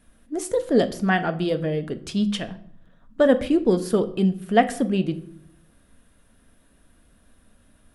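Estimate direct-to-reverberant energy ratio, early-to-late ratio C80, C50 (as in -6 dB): 9.0 dB, 19.5 dB, 15.5 dB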